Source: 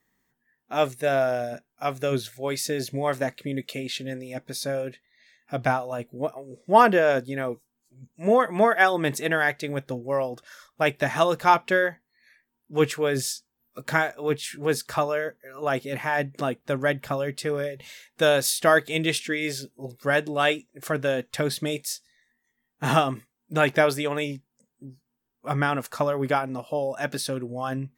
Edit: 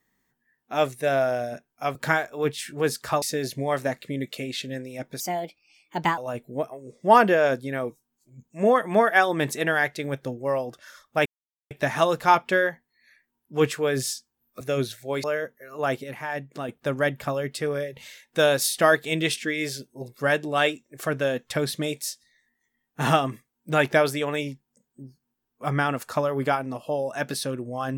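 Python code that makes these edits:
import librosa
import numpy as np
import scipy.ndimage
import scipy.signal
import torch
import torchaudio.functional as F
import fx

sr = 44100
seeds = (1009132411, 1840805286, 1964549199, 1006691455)

y = fx.edit(x, sr, fx.swap(start_s=1.95, length_s=0.63, other_s=13.8, other_length_s=1.27),
    fx.speed_span(start_s=4.56, length_s=1.26, speed=1.29),
    fx.insert_silence(at_s=10.9, length_s=0.45),
    fx.clip_gain(start_s=15.87, length_s=0.65, db=-6.0), tone=tone)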